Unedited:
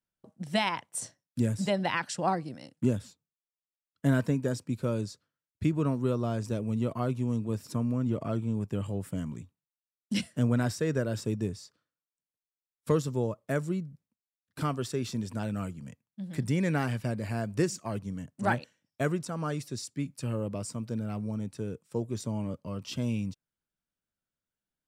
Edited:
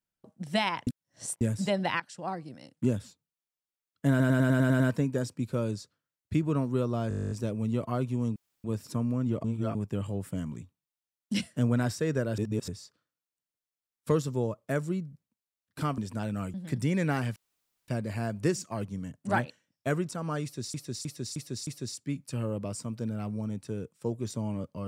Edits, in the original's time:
0.87–1.41 s: reverse
2.00–2.93 s: fade in, from -14.5 dB
4.10 s: stutter 0.10 s, 8 plays
6.39 s: stutter 0.02 s, 12 plays
7.44 s: insert room tone 0.28 s
8.24–8.55 s: reverse
11.18–11.48 s: reverse
14.78–15.18 s: delete
15.74–16.20 s: delete
17.02 s: insert room tone 0.52 s
19.57–19.88 s: loop, 5 plays

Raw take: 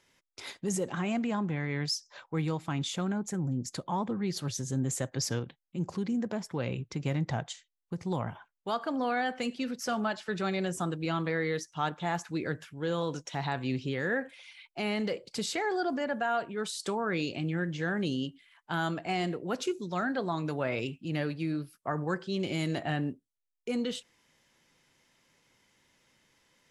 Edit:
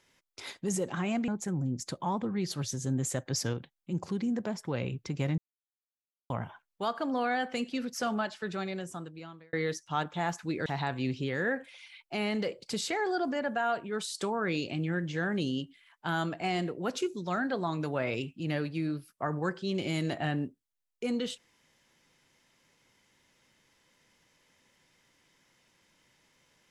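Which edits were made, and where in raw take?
1.28–3.14 s: delete
7.24–8.16 s: mute
9.96–11.39 s: fade out
12.52–13.31 s: delete

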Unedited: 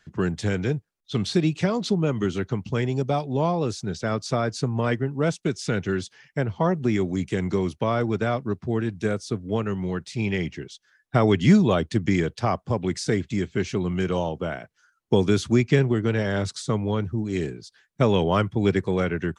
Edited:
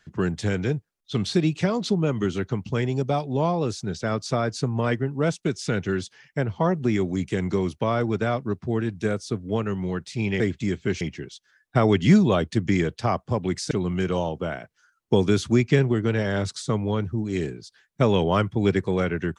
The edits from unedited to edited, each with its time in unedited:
13.10–13.71 s: move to 10.40 s

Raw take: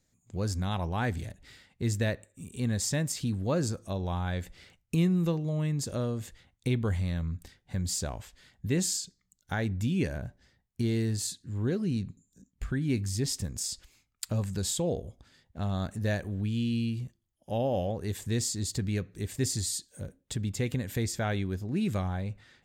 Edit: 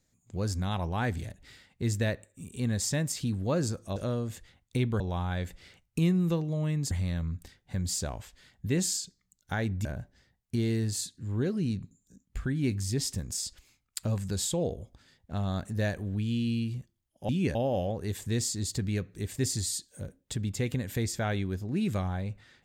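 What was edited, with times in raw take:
5.87–6.91 s: move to 3.96 s
9.85–10.11 s: move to 17.55 s

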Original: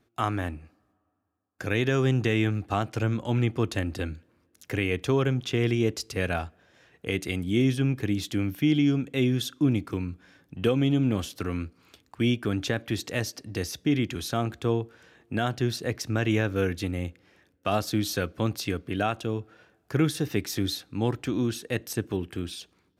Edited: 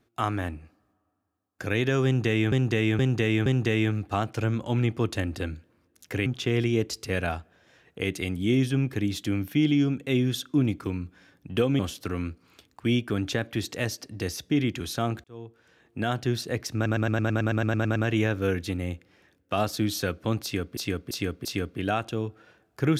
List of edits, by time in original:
2.05–2.52 s: loop, 4 plays
4.85–5.33 s: delete
10.86–11.14 s: delete
14.59–15.47 s: fade in
16.10 s: stutter 0.11 s, 12 plays
18.57–18.91 s: loop, 4 plays

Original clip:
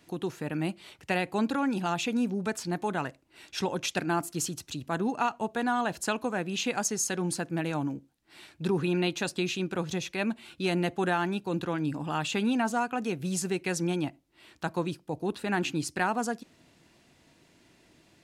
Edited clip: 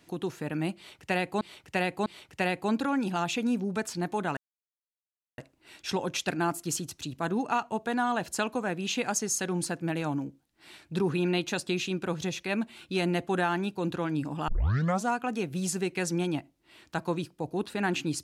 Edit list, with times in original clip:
0.76–1.41 s: loop, 3 plays
3.07 s: insert silence 1.01 s
12.17 s: tape start 0.56 s

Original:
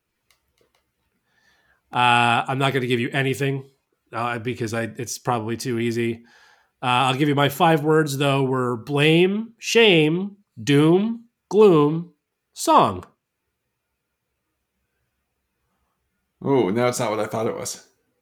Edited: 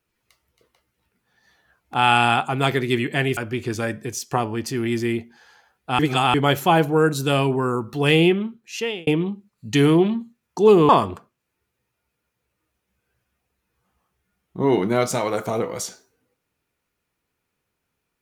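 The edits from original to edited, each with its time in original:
3.37–4.31 s: delete
6.93–7.28 s: reverse
9.26–10.01 s: fade out
11.83–12.75 s: delete

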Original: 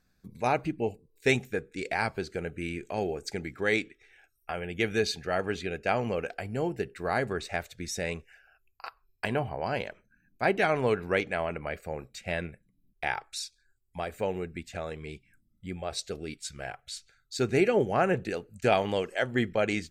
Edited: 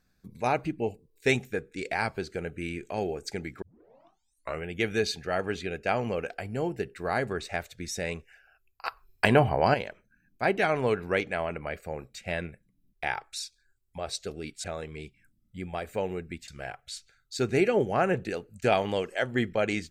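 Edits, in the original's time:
3.62 s: tape start 1.05 s
8.85–9.74 s: gain +9 dB
13.98–14.73 s: swap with 15.82–16.48 s

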